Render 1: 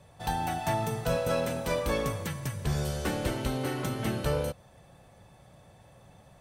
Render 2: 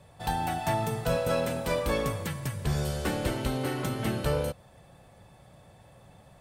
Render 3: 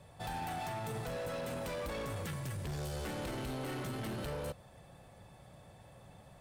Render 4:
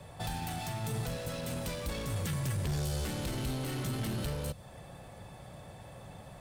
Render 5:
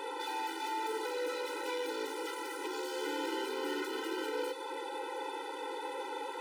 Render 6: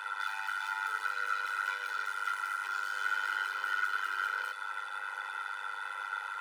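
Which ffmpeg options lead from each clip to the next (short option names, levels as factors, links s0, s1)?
-af "bandreject=f=6000:w=18,volume=1.12"
-af "alimiter=level_in=1.33:limit=0.0631:level=0:latency=1:release=22,volume=0.75,asoftclip=type=hard:threshold=0.0188,volume=0.794"
-filter_complex "[0:a]acrossover=split=230|3000[s0][s1][s2];[s1]acompressor=threshold=0.00398:ratio=6[s3];[s0][s3][s2]amix=inputs=3:normalize=0,volume=2.37"
-filter_complex "[0:a]asplit=2[s0][s1];[s1]highpass=f=720:p=1,volume=44.7,asoftclip=type=tanh:threshold=0.0708[s2];[s0][s2]amix=inputs=2:normalize=0,lowpass=f=1300:p=1,volume=0.501,afftfilt=real='re*eq(mod(floor(b*sr/1024/260),2),1)':imag='im*eq(mod(floor(b*sr/1024/260),2),1)':win_size=1024:overlap=0.75"
-af "tremolo=f=99:d=0.824,highpass=f=1400:t=q:w=10"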